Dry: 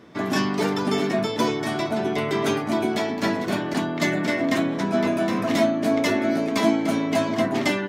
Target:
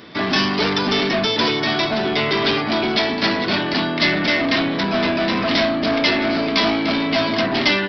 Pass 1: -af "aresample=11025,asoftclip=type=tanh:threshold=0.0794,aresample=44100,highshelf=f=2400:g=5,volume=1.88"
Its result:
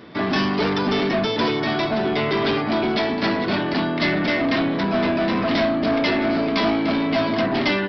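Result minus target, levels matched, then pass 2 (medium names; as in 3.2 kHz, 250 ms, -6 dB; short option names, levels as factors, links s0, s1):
4 kHz band -5.0 dB
-af "aresample=11025,asoftclip=type=tanh:threshold=0.0794,aresample=44100,highshelf=f=2400:g=16,volume=1.88"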